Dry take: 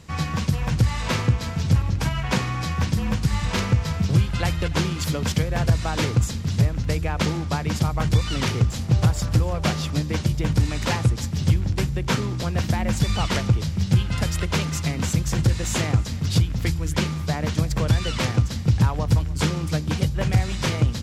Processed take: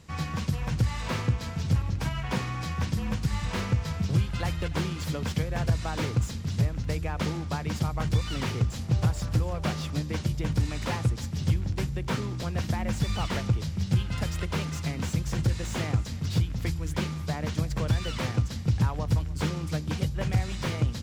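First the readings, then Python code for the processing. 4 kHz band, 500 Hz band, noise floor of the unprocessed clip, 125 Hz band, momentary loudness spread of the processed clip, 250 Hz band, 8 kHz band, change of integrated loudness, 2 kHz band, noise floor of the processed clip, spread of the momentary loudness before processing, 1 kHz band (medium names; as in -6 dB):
-7.5 dB, -6.0 dB, -30 dBFS, -6.0 dB, 4 LU, -6.0 dB, -9.0 dB, -6.0 dB, -7.0 dB, -36 dBFS, 4 LU, -6.0 dB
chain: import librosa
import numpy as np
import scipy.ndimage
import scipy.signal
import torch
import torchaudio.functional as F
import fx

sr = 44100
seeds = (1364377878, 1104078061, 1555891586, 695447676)

y = fx.slew_limit(x, sr, full_power_hz=130.0)
y = y * librosa.db_to_amplitude(-6.0)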